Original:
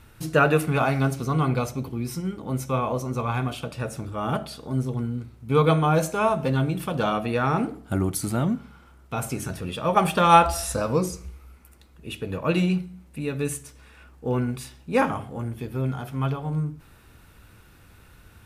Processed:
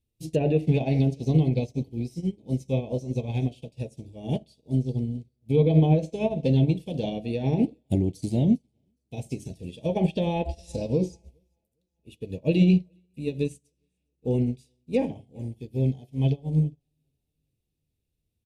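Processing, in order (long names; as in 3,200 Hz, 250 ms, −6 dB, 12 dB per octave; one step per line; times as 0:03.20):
treble cut that deepens with the level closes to 2,300 Hz, closed at −16 dBFS
Butterworth band-reject 1,300 Hz, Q 0.52
repeating echo 408 ms, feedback 55%, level −22.5 dB
boost into a limiter +17 dB
expander for the loud parts 2.5 to 1, over −29 dBFS
level −9 dB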